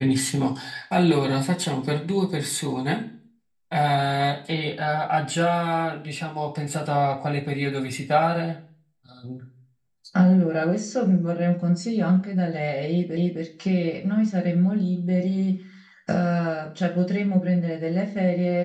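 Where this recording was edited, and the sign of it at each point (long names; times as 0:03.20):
0:13.17: the same again, the last 0.26 s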